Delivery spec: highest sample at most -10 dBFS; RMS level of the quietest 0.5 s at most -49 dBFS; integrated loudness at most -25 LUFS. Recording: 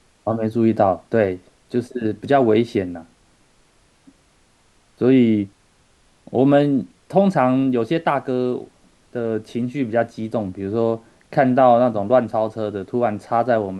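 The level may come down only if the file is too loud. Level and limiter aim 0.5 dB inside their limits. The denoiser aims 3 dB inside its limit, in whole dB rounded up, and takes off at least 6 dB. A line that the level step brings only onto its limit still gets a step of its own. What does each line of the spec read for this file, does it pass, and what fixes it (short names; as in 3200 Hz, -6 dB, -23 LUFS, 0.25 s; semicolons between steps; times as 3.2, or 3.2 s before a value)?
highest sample -3.0 dBFS: fail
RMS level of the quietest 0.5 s -58 dBFS: OK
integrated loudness -19.5 LUFS: fail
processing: gain -6 dB; limiter -10.5 dBFS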